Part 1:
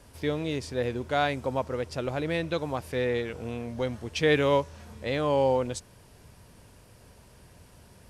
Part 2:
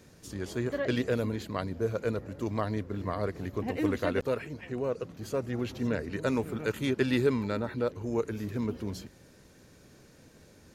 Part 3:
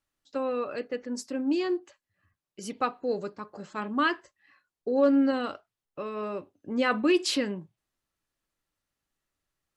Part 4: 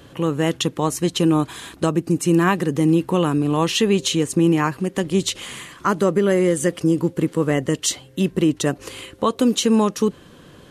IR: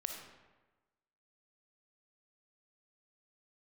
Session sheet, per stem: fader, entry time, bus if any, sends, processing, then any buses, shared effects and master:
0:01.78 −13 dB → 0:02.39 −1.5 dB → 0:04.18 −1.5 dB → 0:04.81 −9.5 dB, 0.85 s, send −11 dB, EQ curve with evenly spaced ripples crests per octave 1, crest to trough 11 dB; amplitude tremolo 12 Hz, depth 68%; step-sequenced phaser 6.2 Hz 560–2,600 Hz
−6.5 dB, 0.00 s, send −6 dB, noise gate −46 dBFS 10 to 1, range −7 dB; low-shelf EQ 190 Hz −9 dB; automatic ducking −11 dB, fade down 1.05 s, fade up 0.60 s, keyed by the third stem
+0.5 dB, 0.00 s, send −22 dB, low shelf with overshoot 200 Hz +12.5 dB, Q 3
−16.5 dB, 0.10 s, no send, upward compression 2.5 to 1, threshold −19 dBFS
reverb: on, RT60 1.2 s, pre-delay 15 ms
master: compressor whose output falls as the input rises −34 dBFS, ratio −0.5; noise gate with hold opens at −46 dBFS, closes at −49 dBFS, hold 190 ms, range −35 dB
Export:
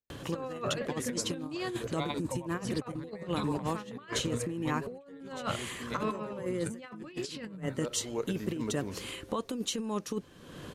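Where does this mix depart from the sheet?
stem 1: send off
reverb return −7.5 dB

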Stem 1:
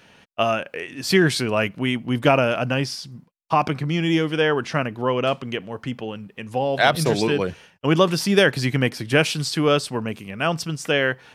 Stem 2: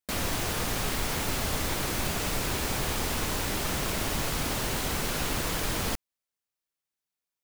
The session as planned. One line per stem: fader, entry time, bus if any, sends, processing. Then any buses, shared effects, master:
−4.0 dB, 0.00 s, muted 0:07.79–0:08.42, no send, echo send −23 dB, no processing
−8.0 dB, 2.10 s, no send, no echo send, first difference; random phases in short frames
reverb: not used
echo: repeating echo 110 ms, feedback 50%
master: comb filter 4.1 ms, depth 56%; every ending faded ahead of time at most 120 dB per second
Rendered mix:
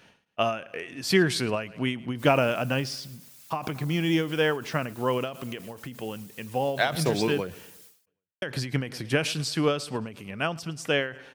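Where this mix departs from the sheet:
stem 2 −8.0 dB → −18.0 dB
master: missing comb filter 4.1 ms, depth 56%

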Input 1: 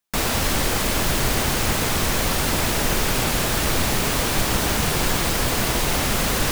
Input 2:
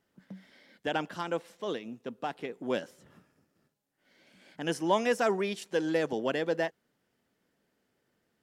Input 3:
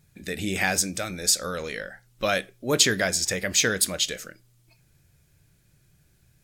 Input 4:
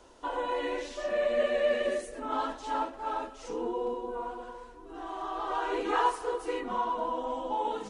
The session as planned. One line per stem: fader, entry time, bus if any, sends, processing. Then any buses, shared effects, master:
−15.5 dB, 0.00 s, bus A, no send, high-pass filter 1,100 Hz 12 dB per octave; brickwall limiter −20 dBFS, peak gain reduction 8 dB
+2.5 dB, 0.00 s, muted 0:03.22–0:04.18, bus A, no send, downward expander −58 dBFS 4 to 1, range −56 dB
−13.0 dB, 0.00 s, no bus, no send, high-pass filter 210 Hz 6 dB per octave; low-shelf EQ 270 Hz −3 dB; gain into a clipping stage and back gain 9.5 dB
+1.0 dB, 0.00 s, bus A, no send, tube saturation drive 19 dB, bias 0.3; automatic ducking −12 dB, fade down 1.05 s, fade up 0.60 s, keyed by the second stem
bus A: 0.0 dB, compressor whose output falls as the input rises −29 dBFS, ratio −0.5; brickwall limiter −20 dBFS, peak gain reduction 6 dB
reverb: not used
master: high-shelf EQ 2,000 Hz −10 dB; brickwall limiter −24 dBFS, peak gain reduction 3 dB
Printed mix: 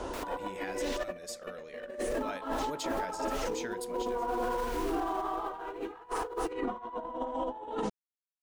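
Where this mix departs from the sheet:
stem 2: muted
stem 4 +1.0 dB → +12.5 dB

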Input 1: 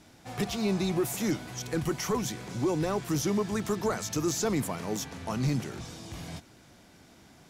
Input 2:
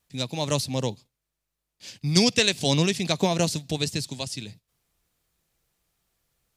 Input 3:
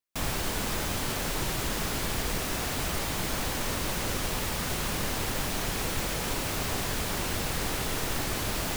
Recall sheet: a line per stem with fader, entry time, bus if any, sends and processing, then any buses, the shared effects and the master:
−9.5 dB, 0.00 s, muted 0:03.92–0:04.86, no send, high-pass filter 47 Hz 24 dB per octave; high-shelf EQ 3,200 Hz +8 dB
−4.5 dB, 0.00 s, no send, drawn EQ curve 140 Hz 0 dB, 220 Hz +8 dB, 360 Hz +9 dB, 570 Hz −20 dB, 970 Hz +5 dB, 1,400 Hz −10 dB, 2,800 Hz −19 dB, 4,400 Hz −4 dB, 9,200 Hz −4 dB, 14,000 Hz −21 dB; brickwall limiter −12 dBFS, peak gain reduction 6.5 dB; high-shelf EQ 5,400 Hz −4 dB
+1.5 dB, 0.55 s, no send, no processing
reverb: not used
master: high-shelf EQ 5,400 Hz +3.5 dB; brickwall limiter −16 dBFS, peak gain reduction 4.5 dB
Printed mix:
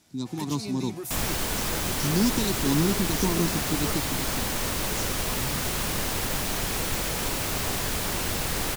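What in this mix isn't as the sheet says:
stem 3: entry 0.55 s → 0.95 s
master: missing brickwall limiter −16 dBFS, peak gain reduction 4.5 dB

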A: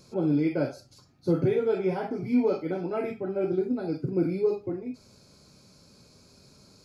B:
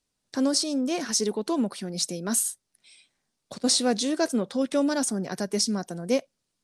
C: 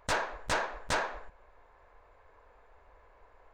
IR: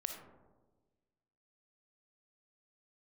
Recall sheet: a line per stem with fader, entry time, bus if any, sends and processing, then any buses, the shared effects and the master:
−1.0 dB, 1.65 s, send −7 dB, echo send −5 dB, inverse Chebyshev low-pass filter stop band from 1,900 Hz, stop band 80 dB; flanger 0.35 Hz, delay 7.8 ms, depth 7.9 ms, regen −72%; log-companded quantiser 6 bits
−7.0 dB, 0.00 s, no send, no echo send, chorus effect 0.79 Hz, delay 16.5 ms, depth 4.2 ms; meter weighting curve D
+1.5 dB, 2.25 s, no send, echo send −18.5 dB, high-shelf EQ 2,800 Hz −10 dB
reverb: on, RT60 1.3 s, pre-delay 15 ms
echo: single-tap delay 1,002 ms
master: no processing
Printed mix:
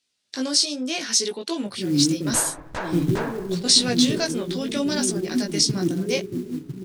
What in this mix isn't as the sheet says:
stem A −1.0 dB → +6.5 dB
stem B −7.0 dB → +1.0 dB

